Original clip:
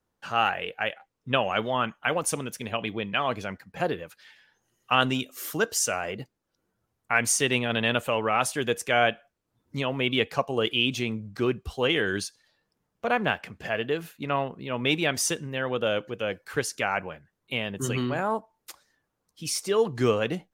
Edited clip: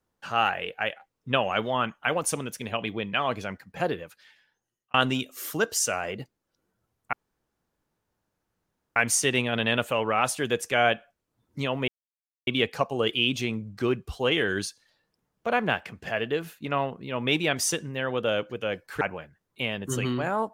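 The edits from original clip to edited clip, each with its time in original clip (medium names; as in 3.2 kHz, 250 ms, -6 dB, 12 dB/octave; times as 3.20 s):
3.93–4.94 s: fade out
7.13 s: insert room tone 1.83 s
10.05 s: insert silence 0.59 s
16.59–16.93 s: delete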